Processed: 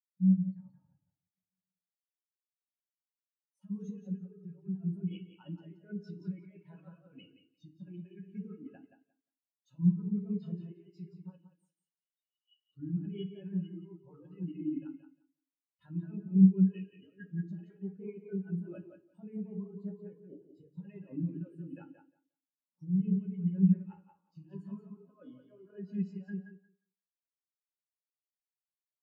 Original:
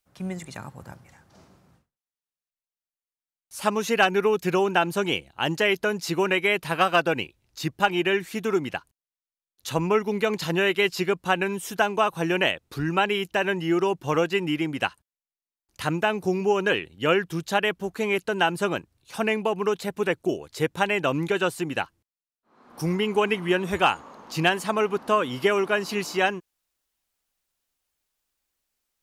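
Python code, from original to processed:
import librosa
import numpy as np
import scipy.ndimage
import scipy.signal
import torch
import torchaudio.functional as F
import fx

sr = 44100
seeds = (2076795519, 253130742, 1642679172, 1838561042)

y = fx.over_compress(x, sr, threshold_db=-26.0, ratio=-0.5)
y = fx.cheby_ripple_highpass(y, sr, hz=2800.0, ripple_db=6, at=(11.36, 12.62), fade=0.02)
y = fx.echo_feedback(y, sr, ms=176, feedback_pct=43, wet_db=-3.5)
y = fx.rev_fdn(y, sr, rt60_s=0.72, lf_ratio=1.3, hf_ratio=0.95, size_ms=32.0, drr_db=0.0)
y = fx.spectral_expand(y, sr, expansion=2.5)
y = F.gain(torch.from_numpy(y), -4.5).numpy()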